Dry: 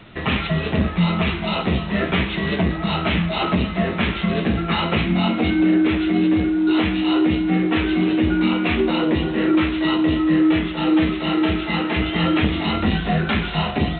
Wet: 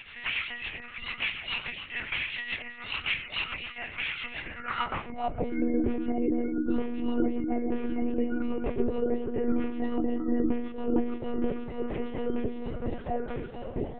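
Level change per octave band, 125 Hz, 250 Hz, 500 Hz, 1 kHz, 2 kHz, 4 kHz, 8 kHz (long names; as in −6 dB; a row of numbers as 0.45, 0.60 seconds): −20.0 dB, −12.5 dB, −8.0 dB, −12.0 dB, −9.5 dB, −11.5 dB, can't be measured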